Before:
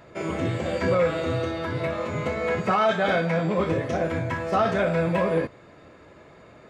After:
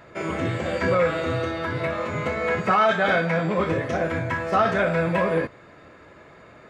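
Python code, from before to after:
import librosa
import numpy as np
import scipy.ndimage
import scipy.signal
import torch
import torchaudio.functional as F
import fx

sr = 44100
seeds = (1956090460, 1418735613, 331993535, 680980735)

y = fx.peak_eq(x, sr, hz=1600.0, db=5.0, octaves=1.3)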